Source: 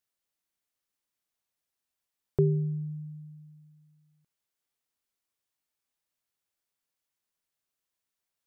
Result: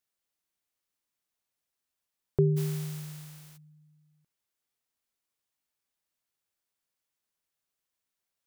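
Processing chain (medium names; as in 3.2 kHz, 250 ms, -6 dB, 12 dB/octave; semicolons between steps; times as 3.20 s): 2.56–3.56 s: spectral contrast reduction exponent 0.46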